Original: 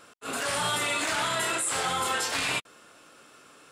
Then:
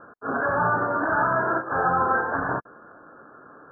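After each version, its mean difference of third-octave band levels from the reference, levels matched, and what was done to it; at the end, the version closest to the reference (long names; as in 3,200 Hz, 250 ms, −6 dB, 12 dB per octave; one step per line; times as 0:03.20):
15.5 dB: Chebyshev low-pass filter 1,700 Hz, order 10
level +8.5 dB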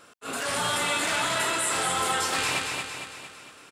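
4.5 dB: repeating echo 228 ms, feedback 53%, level −4 dB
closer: second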